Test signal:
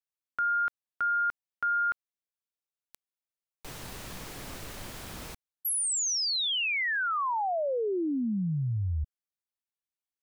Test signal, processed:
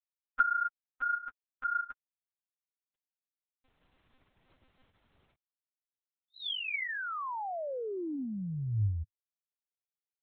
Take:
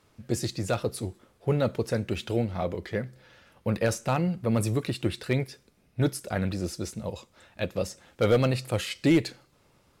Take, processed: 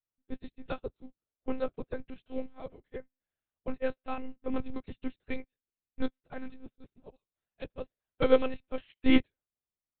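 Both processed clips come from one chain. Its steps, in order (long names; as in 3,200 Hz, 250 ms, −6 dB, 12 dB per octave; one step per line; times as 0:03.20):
dynamic equaliser 100 Hz, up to +4 dB, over −43 dBFS, Q 4
one-pitch LPC vocoder at 8 kHz 260 Hz
expander for the loud parts 2.5 to 1, over −45 dBFS
level +2 dB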